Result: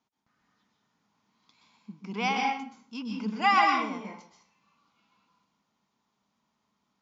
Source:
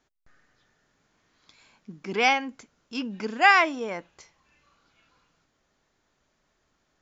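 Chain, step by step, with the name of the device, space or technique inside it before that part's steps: 3.37–3.80 s: comb 3.5 ms, depth 72%; car door speaker (cabinet simulation 110–6600 Hz, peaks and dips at 210 Hz +10 dB, 360 Hz -6 dB, 550 Hz -7 dB, 990 Hz +8 dB, 1.7 kHz -10 dB); plate-style reverb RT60 0.53 s, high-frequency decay 0.8×, pre-delay 115 ms, DRR 0.5 dB; trim -7.5 dB

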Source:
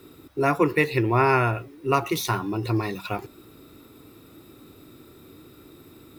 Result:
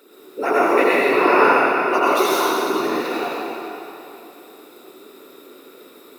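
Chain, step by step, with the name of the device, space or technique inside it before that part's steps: whispering ghost (whisper effect; high-pass 300 Hz 24 dB/octave; reverberation RT60 3.0 s, pre-delay 79 ms, DRR -8 dB); trim -1 dB

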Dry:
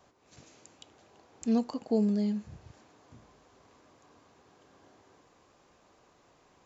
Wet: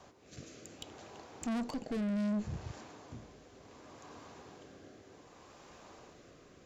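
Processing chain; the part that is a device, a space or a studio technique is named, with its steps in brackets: overdriven rotary cabinet (valve stage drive 40 dB, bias 0.3; rotary cabinet horn 0.65 Hz); trim +10 dB

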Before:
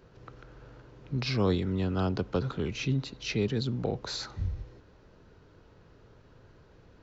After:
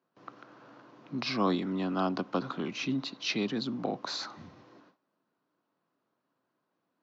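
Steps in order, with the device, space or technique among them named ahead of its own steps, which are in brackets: television speaker (cabinet simulation 190–6500 Hz, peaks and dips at 280 Hz +4 dB, 440 Hz -8 dB, 700 Hz +5 dB, 1.1 kHz +8 dB); gate with hold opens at -48 dBFS; 3.03–3.50 s: dynamic bell 3.9 kHz, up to +5 dB, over -49 dBFS, Q 1.3

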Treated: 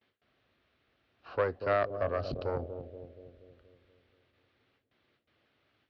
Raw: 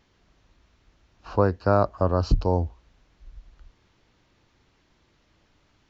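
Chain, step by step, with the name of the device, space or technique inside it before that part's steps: gate with hold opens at -54 dBFS; analogue delay pedal into a guitar amplifier (bucket-brigade echo 237 ms, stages 1024, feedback 55%, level -9.5 dB; valve stage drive 15 dB, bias 0.75; cabinet simulation 99–3900 Hz, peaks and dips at 180 Hz -10 dB, 310 Hz -5 dB, 940 Hz -9 dB); bass shelf 110 Hz -10.5 dB

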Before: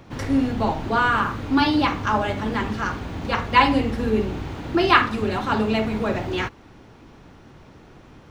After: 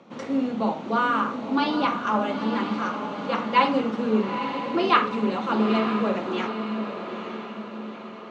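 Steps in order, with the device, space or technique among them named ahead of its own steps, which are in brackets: television speaker (cabinet simulation 190–6800 Hz, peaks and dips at 210 Hz +8 dB, 300 Hz -3 dB, 530 Hz +6 dB, 1.2 kHz +4 dB, 1.7 kHz -6 dB, 5.1 kHz -6 dB); echo that smears into a reverb 900 ms, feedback 51%, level -7.5 dB; trim -4.5 dB

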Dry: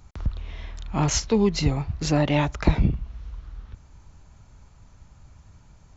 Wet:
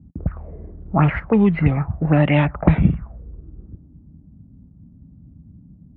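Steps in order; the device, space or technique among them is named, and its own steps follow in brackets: envelope filter bass rig (touch-sensitive low-pass 230–3300 Hz up, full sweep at -17 dBFS; cabinet simulation 63–2100 Hz, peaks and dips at 170 Hz +7 dB, 400 Hz -4 dB, 970 Hz -5 dB); trim +4.5 dB

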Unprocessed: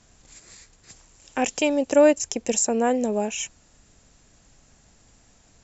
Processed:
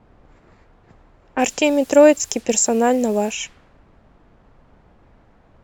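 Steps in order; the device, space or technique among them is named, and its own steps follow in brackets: cassette deck with a dynamic noise filter (white noise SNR 25 dB; level-controlled noise filter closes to 820 Hz, open at -21 dBFS); trim +5 dB

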